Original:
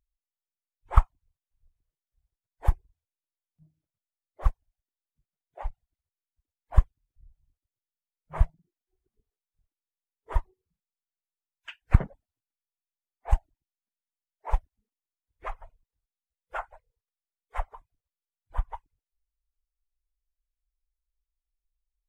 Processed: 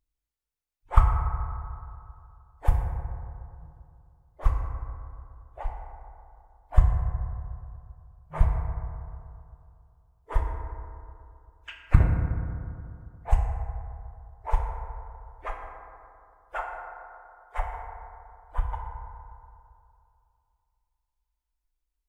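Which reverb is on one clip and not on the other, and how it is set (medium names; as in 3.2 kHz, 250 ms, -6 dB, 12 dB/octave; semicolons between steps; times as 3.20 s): FDN reverb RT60 2.6 s, high-frequency decay 0.3×, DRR -0.5 dB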